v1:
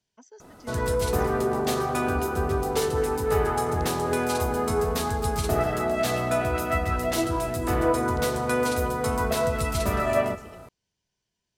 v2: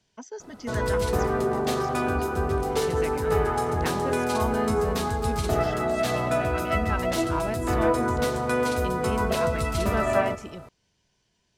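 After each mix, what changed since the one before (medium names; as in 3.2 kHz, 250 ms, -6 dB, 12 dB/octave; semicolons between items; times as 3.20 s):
speech +11.5 dB; master: add treble shelf 8.8 kHz -8 dB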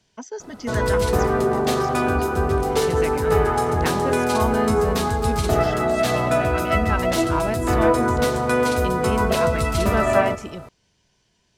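speech +5.5 dB; background +5.0 dB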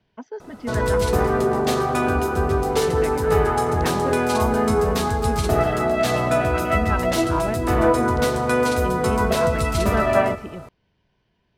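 speech: add distance through air 340 m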